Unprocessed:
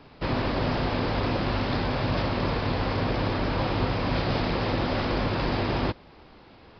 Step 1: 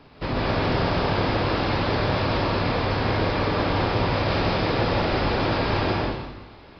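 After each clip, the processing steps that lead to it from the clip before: plate-style reverb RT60 1.1 s, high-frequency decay 0.95×, pre-delay 115 ms, DRR -3 dB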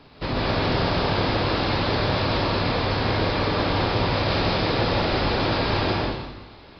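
peaking EQ 4.1 kHz +5 dB 0.78 oct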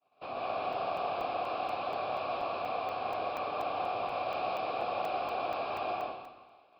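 vowel filter a; expander -54 dBFS; crackling interface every 0.24 s, samples 128, zero, from 0.49 s

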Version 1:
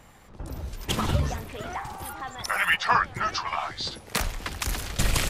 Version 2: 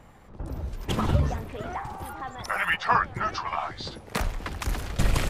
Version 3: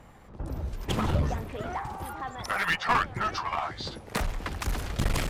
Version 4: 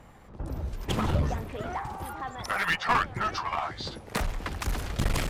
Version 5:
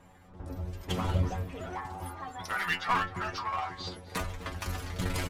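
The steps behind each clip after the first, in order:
treble shelf 2.1 kHz -10.5 dB; trim +2 dB
one-sided clip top -25 dBFS
no audible change
inharmonic resonator 89 Hz, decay 0.25 s, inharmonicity 0.002; echo from a far wall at 44 m, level -16 dB; trim +4.5 dB

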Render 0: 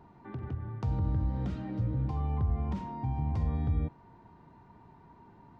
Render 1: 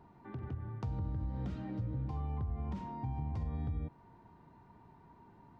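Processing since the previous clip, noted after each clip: compression 4:1, threshold -30 dBFS, peak gain reduction 5.5 dB; trim -3.5 dB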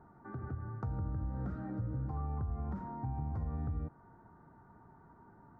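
resonant high shelf 2 kHz -12.5 dB, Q 3; band-stop 1 kHz, Q 5.8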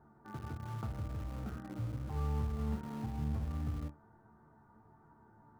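chord resonator D2 fifth, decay 0.24 s; in parallel at -11 dB: word length cut 8-bit, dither none; on the sum: trim +6 dB

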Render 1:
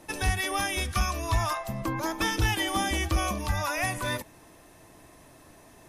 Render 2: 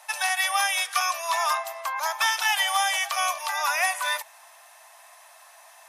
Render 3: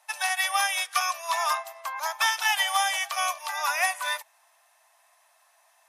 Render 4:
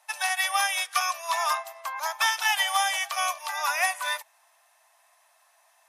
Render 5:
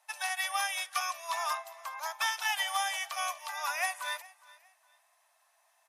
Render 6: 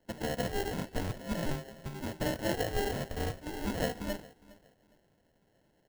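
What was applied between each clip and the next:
steep high-pass 680 Hz 48 dB/octave; trim +6 dB
upward expansion 1.5:1, over -45 dBFS
no audible change
feedback delay 410 ms, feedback 29%, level -21.5 dB; trim -7 dB
sample-rate reducer 1.2 kHz, jitter 0%; de-hum 378.9 Hz, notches 33

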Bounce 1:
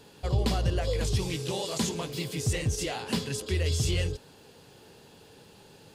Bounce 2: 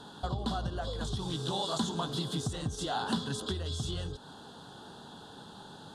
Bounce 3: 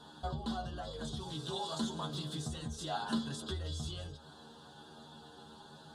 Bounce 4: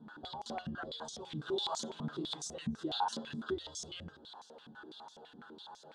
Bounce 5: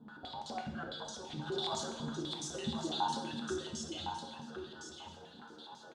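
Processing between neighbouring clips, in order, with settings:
compression 6:1, threshold -34 dBFS, peak gain reduction 12.5 dB; FFT filter 100 Hz 0 dB, 230 Hz +8 dB, 500 Hz -2 dB, 720 Hz +9 dB, 1.5 kHz +10 dB, 2.3 kHz -18 dB, 3.5 kHz +11 dB, 5 kHz -2 dB, 9.6 kHz 0 dB, 14 kHz -15 dB
inharmonic resonator 75 Hz, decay 0.26 s, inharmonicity 0.002; trim +2.5 dB
step-sequenced band-pass 12 Hz 210–6100 Hz; trim +11.5 dB
delay 1060 ms -7 dB; plate-style reverb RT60 1 s, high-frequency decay 0.9×, DRR 3 dB; trim -1.5 dB

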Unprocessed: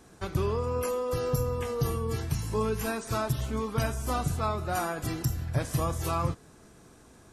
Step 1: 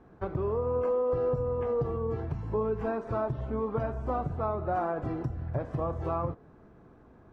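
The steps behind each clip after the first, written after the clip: low-pass 1.3 kHz 12 dB/octave; compression 2.5:1, threshold -32 dBFS, peak gain reduction 7 dB; dynamic bell 570 Hz, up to +7 dB, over -48 dBFS, Q 0.75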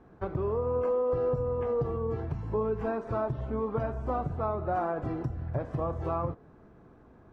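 no audible change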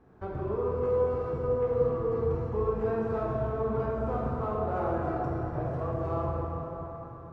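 in parallel at -12 dB: hard clipper -27.5 dBFS, distortion -13 dB; on the sum: plate-style reverb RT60 4.3 s, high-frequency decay 0.6×, DRR -4.5 dB; trim -7 dB

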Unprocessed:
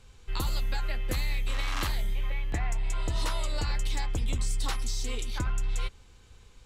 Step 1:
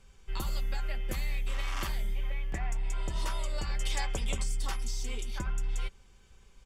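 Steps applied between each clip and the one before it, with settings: time-frequency box 3.80–4.43 s, 400–12000 Hz +7 dB; band-stop 4 kHz, Q 7.6; comb 5.2 ms, depth 43%; trim -4.5 dB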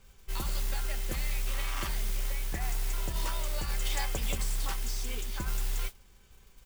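modulation noise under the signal 13 dB

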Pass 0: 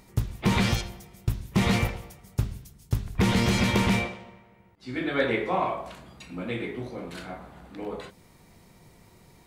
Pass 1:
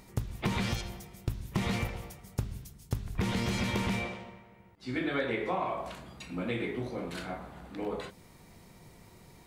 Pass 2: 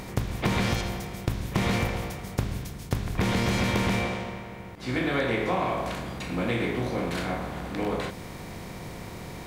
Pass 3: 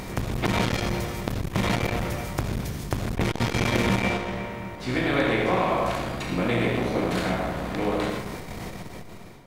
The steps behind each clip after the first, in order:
compression 6:1, threshold -28 dBFS, peak gain reduction 9.5 dB
spectral levelling over time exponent 0.6; trim +2.5 dB
fade out at the end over 0.72 s; algorithmic reverb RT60 0.91 s, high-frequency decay 0.55×, pre-delay 40 ms, DRR 2.5 dB; transformer saturation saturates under 530 Hz; trim +3.5 dB

